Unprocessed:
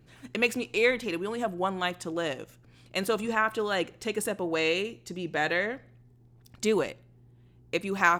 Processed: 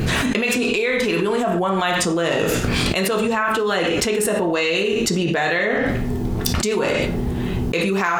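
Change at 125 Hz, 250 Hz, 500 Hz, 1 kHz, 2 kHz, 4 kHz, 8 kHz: +17.5 dB, +12.5 dB, +9.5 dB, +7.5 dB, +7.5 dB, +11.5 dB, +14.5 dB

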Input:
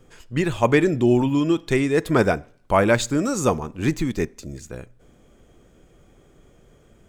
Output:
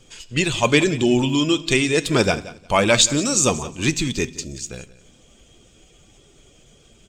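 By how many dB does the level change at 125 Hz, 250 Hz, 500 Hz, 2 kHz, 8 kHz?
0.0 dB, 0.0 dB, -0.5 dB, +4.0 dB, +12.5 dB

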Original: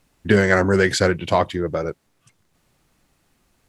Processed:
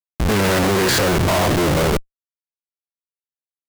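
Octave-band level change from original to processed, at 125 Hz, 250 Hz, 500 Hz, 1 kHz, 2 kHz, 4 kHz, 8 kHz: +4.0 dB, +2.0 dB, +0.5 dB, +3.5 dB, -0.5 dB, +7.5 dB, +8.0 dB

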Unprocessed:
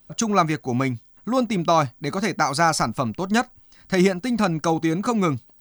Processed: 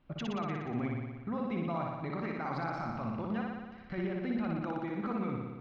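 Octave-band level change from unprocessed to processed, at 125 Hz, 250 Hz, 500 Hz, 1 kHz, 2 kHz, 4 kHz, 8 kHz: -11.5 dB, -12.0 dB, -15.0 dB, -16.0 dB, -15.5 dB, -20.5 dB, under -30 dB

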